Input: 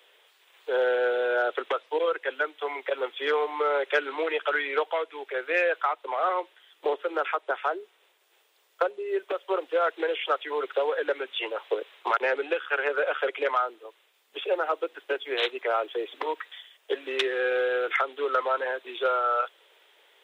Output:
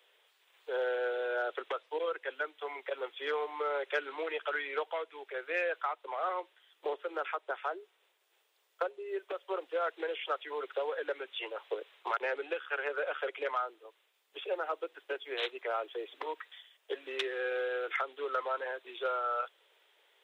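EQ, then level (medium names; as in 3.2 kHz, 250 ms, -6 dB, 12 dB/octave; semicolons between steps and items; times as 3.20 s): peaking EQ 210 Hz -8 dB 0.65 oct; -8.0 dB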